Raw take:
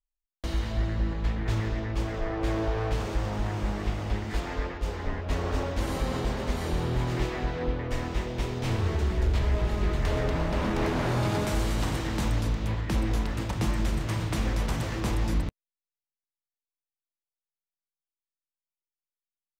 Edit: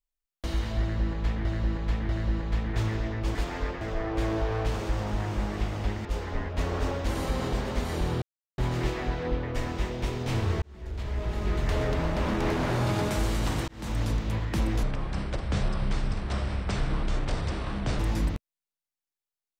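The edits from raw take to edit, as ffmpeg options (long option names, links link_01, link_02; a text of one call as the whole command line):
ffmpeg -i in.wav -filter_complex "[0:a]asplit=11[link_01][link_02][link_03][link_04][link_05][link_06][link_07][link_08][link_09][link_10][link_11];[link_01]atrim=end=1.452[link_12];[link_02]atrim=start=0.808:end=1.452[link_13];[link_03]atrim=start=0.808:end=2.072[link_14];[link_04]atrim=start=4.308:end=4.772[link_15];[link_05]atrim=start=2.068:end=4.312[link_16];[link_06]atrim=start=4.768:end=6.94,asetpts=PTS-STARTPTS,afade=type=out:start_time=2.168:duration=0.004:curve=hsin,apad=pad_dur=0.36[link_17];[link_07]atrim=start=6.94:end=8.98,asetpts=PTS-STARTPTS,afade=type=in:duration=0.004:curve=hsin,afade=type=out:start_time=2.036:duration=0.004:curve=hsin[link_18];[link_08]atrim=start=8.98:end=12.04,asetpts=PTS-STARTPTS,afade=type=in:duration=1.01,afade=type=out:start_time=3.056:duration=0.004:curve=hsin[link_19];[link_09]atrim=start=12.04:end=13.194,asetpts=PTS-STARTPTS,afade=type=in:duration=0.37[link_20];[link_10]atrim=start=13.19:end=15.12,asetpts=PTS-STARTPTS,asetrate=26901,aresample=44100[link_21];[link_11]atrim=start=15.116[link_22];[link_12][link_13]acrossfade=duration=0.004:curve1=hsin:curve2=hsin[link_23];[link_23][link_14]acrossfade=duration=0.004:curve1=hsin:curve2=hsin[link_24];[link_24][link_15]acrossfade=duration=0.004:curve1=hsin:curve2=hsin[link_25];[link_25][link_16]acrossfade=duration=0.004:curve1=hsin:curve2=hsin[link_26];[link_17][link_18][link_19][link_20]concat=n=4:v=0:a=1[link_27];[link_26][link_27]acrossfade=duration=0.004:curve1=hsin:curve2=hsin[link_28];[link_28][link_21]acrossfade=duration=0.004:curve1=hsin:curve2=hsin[link_29];[link_29][link_22]acrossfade=duration=0.004:curve1=hsin:curve2=hsin" out.wav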